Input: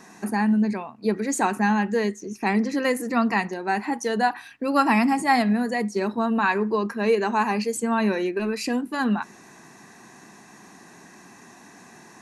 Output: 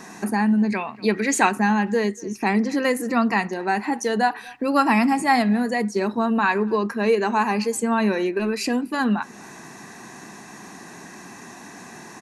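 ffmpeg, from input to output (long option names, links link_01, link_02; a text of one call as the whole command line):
ffmpeg -i in.wav -filter_complex "[0:a]asplit=2[link_01][link_02];[link_02]adelay=240,highpass=300,lowpass=3400,asoftclip=type=hard:threshold=-15dB,volume=-26dB[link_03];[link_01][link_03]amix=inputs=2:normalize=0,asplit=2[link_04][link_05];[link_05]acompressor=threshold=-36dB:ratio=6,volume=2dB[link_06];[link_04][link_06]amix=inputs=2:normalize=0,asettb=1/sr,asplit=3[link_07][link_08][link_09];[link_07]atrim=end=0.724[link_10];[link_08]atrim=start=0.72:end=1.49,asetpts=PTS-STARTPTS,afade=type=in:duration=0.004:curve=qsin,afade=type=out:start_time=0.766:duration=0.004:curve=qsin,equalizer=frequency=2500:width_type=o:width=1.7:gain=10.5[link_11];[link_09]atrim=start=1.486[link_12];[link_10][link_11]acrossfade=duration=0.004:curve1=hsin:curve2=qsin[link_13];[link_13][link_12]acrossfade=duration=0.004:curve1=qsin:curve2=hsin" out.wav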